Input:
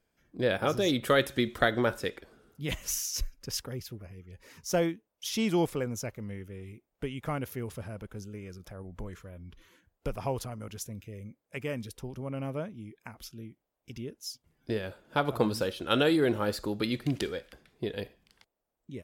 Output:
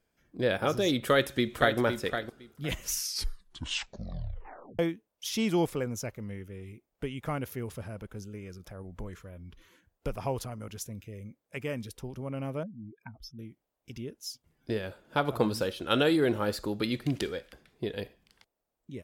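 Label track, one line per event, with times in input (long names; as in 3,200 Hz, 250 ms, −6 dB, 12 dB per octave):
1.000000	1.780000	delay throw 510 ms, feedback 15%, level −8 dB
2.890000	2.890000	tape stop 1.90 s
12.630000	13.390000	expanding power law on the bin magnitudes exponent 2.5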